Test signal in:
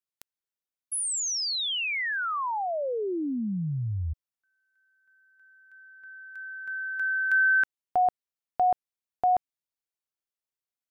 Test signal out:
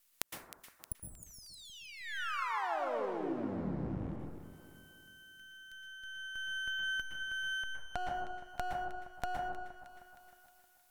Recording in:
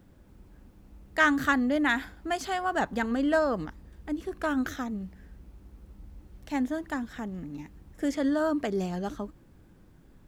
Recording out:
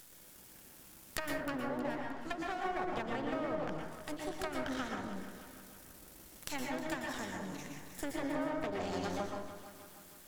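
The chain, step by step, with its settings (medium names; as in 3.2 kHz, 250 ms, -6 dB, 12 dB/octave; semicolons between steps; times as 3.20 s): octave divider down 1 oct, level 0 dB; RIAA curve recording; low-pass that closes with the level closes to 640 Hz, closed at -24 dBFS; treble shelf 3.5 kHz +5.5 dB; compression 4:1, threshold -33 dBFS; half-wave rectifier; on a send: echo whose repeats swap between lows and highs 156 ms, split 1.3 kHz, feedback 66%, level -9 dB; on the sum: plate-style reverb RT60 0.65 s, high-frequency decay 0.4×, pre-delay 105 ms, DRR 0 dB; tape noise reduction on one side only encoder only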